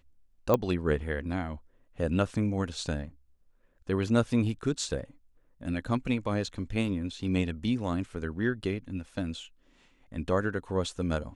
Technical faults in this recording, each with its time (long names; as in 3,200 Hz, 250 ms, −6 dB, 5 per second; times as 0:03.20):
0:00.54: click −12 dBFS